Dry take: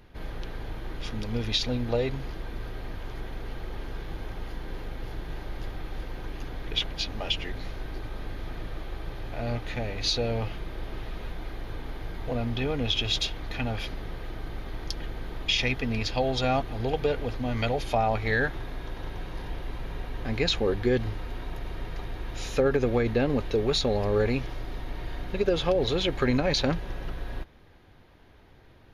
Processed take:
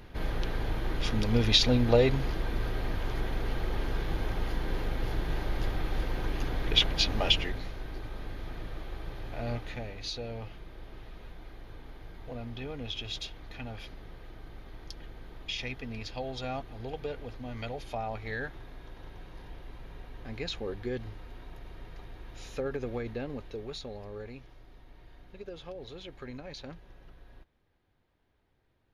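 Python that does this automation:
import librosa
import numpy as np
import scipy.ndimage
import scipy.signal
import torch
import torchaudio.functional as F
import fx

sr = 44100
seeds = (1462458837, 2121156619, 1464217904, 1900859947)

y = fx.gain(x, sr, db=fx.line((7.29, 4.5), (7.71, -3.5), (9.53, -3.5), (10.07, -10.5), (22.98, -10.5), (24.32, -18.5)))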